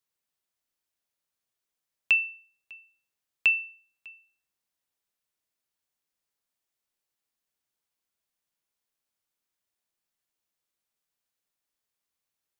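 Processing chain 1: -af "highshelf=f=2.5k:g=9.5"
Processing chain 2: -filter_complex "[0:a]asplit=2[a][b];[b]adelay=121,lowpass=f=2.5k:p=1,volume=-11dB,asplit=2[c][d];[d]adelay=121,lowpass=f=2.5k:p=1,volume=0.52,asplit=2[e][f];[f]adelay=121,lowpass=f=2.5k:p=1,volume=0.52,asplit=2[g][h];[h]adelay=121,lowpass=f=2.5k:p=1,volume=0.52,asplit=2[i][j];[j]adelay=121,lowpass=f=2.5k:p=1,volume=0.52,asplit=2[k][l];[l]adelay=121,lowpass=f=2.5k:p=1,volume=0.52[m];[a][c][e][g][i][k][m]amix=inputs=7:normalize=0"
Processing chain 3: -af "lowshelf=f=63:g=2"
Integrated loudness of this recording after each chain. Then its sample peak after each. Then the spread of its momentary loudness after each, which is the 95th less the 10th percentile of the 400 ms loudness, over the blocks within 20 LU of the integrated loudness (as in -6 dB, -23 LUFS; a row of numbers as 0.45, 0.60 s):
-20.0, -25.0, -25.0 LUFS; -8.0, -13.0, -13.0 dBFS; 13, 17, 13 LU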